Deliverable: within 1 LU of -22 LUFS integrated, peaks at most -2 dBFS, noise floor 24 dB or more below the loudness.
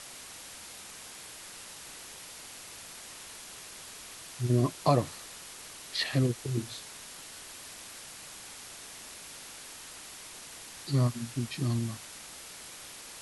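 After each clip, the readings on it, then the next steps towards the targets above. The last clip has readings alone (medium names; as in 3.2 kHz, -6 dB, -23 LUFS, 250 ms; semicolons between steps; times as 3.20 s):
noise floor -47 dBFS; noise floor target -60 dBFS; loudness -35.5 LUFS; peak level -10.5 dBFS; loudness target -22.0 LUFS
-> noise print and reduce 13 dB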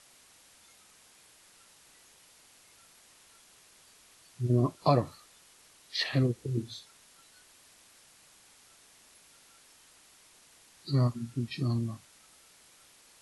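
noise floor -60 dBFS; loudness -30.5 LUFS; peak level -11.0 dBFS; loudness target -22.0 LUFS
-> trim +8.5 dB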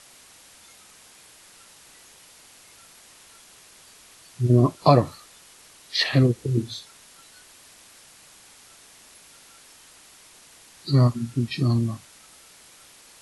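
loudness -22.0 LUFS; peak level -2.5 dBFS; noise floor -51 dBFS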